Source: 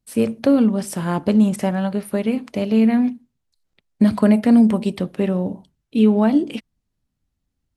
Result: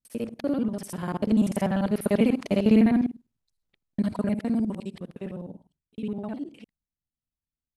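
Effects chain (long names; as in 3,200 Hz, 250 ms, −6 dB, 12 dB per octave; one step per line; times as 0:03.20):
reversed piece by piece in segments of 50 ms
source passing by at 0:02.31, 8 m/s, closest 4.2 metres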